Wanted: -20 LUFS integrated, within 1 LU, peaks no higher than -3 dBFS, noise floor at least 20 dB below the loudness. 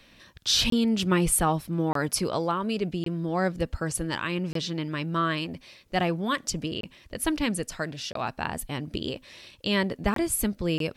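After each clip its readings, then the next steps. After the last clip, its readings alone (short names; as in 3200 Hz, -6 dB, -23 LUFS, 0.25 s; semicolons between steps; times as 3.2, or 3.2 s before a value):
dropouts 8; longest dropout 23 ms; loudness -27.5 LUFS; peak -9.5 dBFS; loudness target -20.0 LUFS
-> interpolate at 0.7/1.93/3.04/4.53/6.81/8.13/10.14/10.78, 23 ms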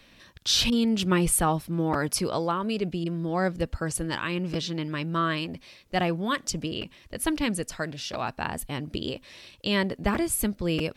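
dropouts 0; loudness -27.5 LUFS; peak -9.5 dBFS; loudness target -20.0 LUFS
-> gain +7.5 dB; limiter -3 dBFS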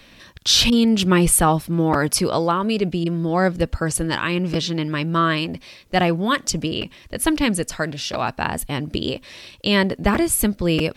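loudness -20.0 LUFS; peak -3.0 dBFS; noise floor -49 dBFS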